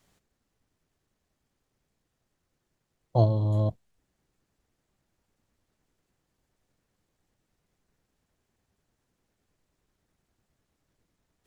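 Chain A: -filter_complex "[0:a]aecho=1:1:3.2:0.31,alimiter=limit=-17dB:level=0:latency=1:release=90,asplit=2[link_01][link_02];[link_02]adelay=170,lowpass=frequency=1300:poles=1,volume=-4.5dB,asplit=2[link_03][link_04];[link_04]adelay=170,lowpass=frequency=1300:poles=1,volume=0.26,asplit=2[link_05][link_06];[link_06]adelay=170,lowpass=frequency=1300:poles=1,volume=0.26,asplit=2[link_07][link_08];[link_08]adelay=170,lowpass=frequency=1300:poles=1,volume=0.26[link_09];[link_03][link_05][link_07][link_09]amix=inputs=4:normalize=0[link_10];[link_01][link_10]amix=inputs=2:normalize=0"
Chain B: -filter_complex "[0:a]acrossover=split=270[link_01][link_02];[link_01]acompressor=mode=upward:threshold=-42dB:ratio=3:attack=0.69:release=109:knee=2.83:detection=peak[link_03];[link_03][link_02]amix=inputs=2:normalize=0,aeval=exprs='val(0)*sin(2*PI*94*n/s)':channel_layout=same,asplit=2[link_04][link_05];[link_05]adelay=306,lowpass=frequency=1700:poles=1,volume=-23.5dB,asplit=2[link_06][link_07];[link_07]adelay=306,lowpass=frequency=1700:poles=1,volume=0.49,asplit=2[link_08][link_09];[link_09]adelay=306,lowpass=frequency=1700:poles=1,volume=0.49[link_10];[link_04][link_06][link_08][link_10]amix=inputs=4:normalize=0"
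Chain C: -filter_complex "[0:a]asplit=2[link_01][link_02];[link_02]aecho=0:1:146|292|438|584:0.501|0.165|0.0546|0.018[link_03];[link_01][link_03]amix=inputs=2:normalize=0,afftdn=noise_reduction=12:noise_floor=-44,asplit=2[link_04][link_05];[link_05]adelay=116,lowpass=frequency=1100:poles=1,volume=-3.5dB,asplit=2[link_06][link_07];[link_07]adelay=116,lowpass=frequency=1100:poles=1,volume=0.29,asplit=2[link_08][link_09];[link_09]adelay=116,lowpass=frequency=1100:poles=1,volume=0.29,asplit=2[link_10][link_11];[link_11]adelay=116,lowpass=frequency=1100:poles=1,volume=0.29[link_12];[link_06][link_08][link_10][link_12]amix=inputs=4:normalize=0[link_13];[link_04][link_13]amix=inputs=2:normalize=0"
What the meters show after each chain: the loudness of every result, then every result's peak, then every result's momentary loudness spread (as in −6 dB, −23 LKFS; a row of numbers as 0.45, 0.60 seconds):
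−27.0, −30.5, −25.5 LKFS; −14.5, −9.5, −9.0 dBFS; 12, 7, 15 LU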